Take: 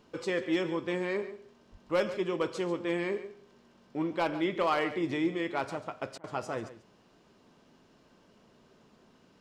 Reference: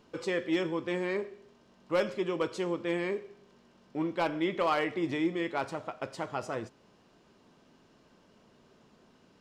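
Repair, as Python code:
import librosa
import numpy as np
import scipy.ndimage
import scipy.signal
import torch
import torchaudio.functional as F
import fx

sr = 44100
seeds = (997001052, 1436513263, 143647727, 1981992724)

y = fx.highpass(x, sr, hz=140.0, slope=24, at=(1.71, 1.83), fade=0.02)
y = fx.fix_interpolate(y, sr, at_s=(6.18,), length_ms=57.0)
y = fx.fix_echo_inverse(y, sr, delay_ms=140, level_db=-14.0)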